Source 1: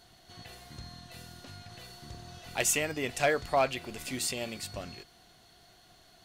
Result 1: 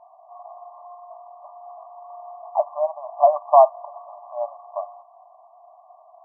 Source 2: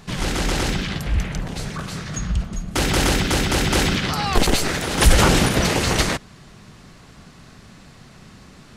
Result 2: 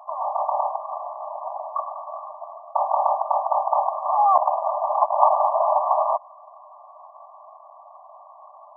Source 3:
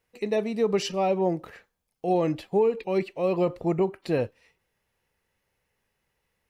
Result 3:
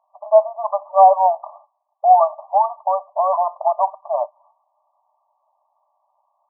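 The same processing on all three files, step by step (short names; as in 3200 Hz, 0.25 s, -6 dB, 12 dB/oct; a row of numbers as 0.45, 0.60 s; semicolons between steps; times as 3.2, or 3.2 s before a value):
soft clip -12.5 dBFS; brick-wall FIR band-pass 580–1200 Hz; normalise peaks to -2 dBFS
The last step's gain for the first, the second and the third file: +15.5, +11.0, +19.5 dB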